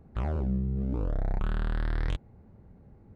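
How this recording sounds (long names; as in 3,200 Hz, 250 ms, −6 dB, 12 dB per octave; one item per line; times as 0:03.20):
background noise floor −56 dBFS
spectral slope −7.0 dB per octave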